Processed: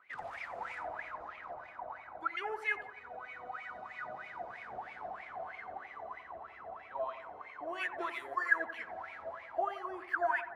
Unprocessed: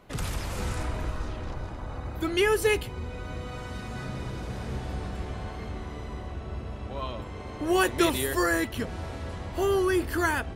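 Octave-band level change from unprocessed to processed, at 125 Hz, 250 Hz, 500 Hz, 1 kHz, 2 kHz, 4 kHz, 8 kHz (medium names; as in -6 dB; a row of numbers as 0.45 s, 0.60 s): -33.5 dB, -23.5 dB, -13.5 dB, -4.5 dB, -4.5 dB, -18.5 dB, under -30 dB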